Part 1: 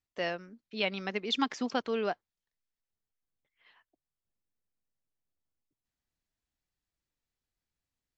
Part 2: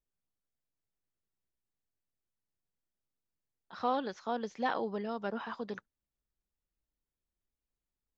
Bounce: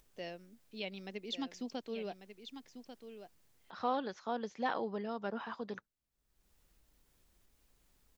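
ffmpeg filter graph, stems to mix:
-filter_complex "[0:a]equalizer=f=1.3k:t=o:w=1.3:g=-13,volume=-7.5dB,asplit=3[a][b][c];[b]volume=-10dB[d];[1:a]acompressor=mode=upward:threshold=-48dB:ratio=2.5,volume=-2.5dB[e];[c]apad=whole_len=360604[f];[e][f]sidechaincompress=threshold=-41dB:ratio=8:attack=5.4:release=180[g];[d]aecho=0:1:1143:1[h];[a][g][h]amix=inputs=3:normalize=0"

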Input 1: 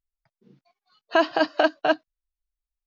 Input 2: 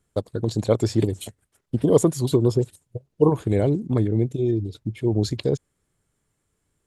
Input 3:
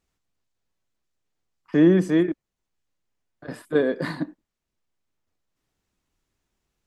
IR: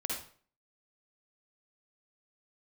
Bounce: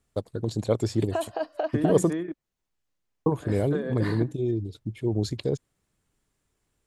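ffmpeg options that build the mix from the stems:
-filter_complex "[0:a]equalizer=f=550:t=o:w=1.4:g=14,acompressor=threshold=-23dB:ratio=2,volume=-10dB[a];[1:a]volume=-4.5dB,asplit=3[b][c][d];[b]atrim=end=2.13,asetpts=PTS-STARTPTS,afade=t=out:st=2.126:d=0.004:c=hsin[e];[c]atrim=start=2.13:end=3.26,asetpts=PTS-STARTPTS,volume=0[f];[d]atrim=start=3.26,asetpts=PTS-STARTPTS,afade=t=in:d=0.004:c=hsin[g];[e][f][g]concat=n=3:v=0:a=1[h];[2:a]acompressor=threshold=-25dB:ratio=12,volume=-1.5dB[i];[a][h][i]amix=inputs=3:normalize=0"

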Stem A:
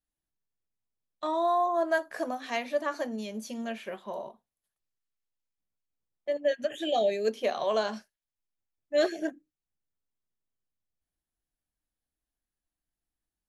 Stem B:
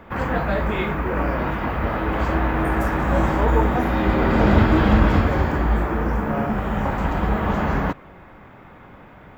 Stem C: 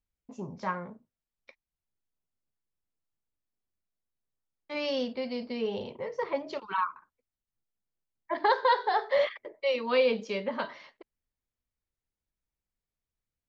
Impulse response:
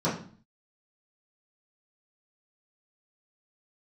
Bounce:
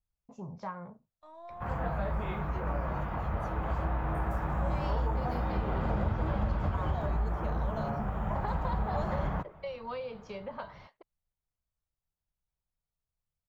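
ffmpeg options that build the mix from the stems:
-filter_complex "[0:a]aeval=exprs='if(lt(val(0),0),0.708*val(0),val(0))':c=same,dynaudnorm=f=840:g=7:m=11.5dB,volume=-18.5dB[a];[1:a]adelay=1500,volume=-7dB[b];[2:a]acompressor=threshold=-34dB:ratio=4,volume=2dB[c];[a][b][c]amix=inputs=3:normalize=0,firequalizer=gain_entry='entry(160,0);entry(250,-11);entry(700,-2);entry(1200,-4);entry(1800,-10)':delay=0.05:min_phase=1,acompressor=threshold=-26dB:ratio=6"

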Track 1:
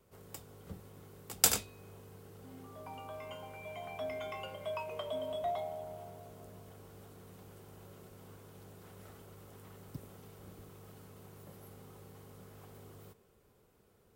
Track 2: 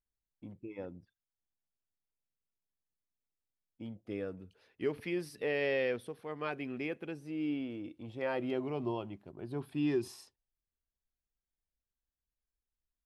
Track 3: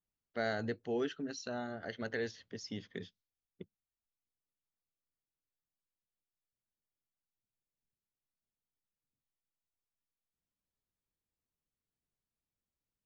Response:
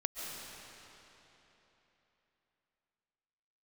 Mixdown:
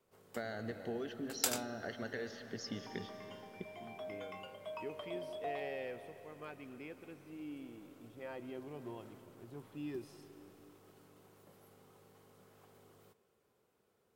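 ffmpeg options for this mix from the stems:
-filter_complex "[0:a]highpass=f=280:p=1,volume=-5.5dB[a];[1:a]volume=-13.5dB,asplit=2[b][c];[c]volume=-10.5dB[d];[2:a]acompressor=threshold=-41dB:ratio=10,volume=-0.5dB,asplit=2[e][f];[f]volume=-4.5dB[g];[3:a]atrim=start_sample=2205[h];[d][g]amix=inputs=2:normalize=0[i];[i][h]afir=irnorm=-1:irlink=0[j];[a][b][e][j]amix=inputs=4:normalize=0,highshelf=f=9.5k:g=-6"

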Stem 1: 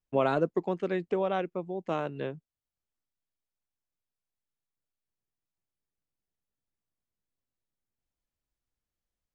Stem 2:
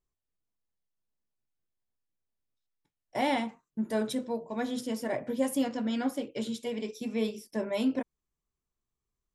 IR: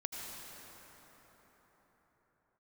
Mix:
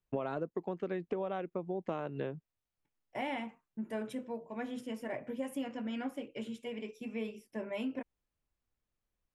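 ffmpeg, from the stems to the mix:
-filter_complex "[0:a]highshelf=f=3.6k:g=-9.5,volume=2.5dB[a];[1:a]highshelf=f=3.3k:t=q:w=3:g=-6,volume=-7dB[b];[a][b]amix=inputs=2:normalize=0,acompressor=threshold=-32dB:ratio=12"

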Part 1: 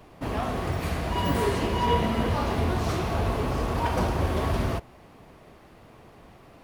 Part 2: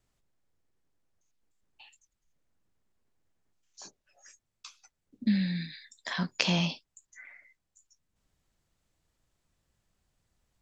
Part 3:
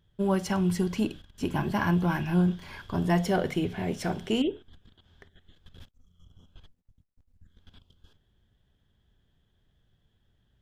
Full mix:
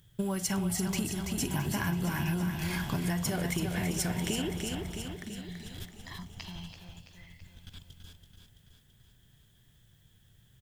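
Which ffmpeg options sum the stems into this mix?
-filter_complex "[0:a]aecho=1:1:1.4:0.99,adelay=350,volume=-16dB[a];[1:a]volume=-13.5dB,asplit=2[b][c];[c]volume=-13dB[d];[2:a]aemphasis=mode=production:type=75fm,acompressor=threshold=-31dB:ratio=6,equalizer=f=125:t=o:w=1:g=10,equalizer=f=2k:t=o:w=1:g=5,equalizer=f=8k:t=o:w=1:g=6,volume=1dB,asplit=2[e][f];[f]volume=-6.5dB[g];[a][b]amix=inputs=2:normalize=0,aecho=1:1:1:0.87,acompressor=threshold=-41dB:ratio=6,volume=0dB[h];[d][g]amix=inputs=2:normalize=0,aecho=0:1:332|664|996|1328|1660|1992|2324|2656|2988:1|0.57|0.325|0.185|0.106|0.0602|0.0343|0.0195|0.0111[i];[e][h][i]amix=inputs=3:normalize=0,acompressor=threshold=-27dB:ratio=6"

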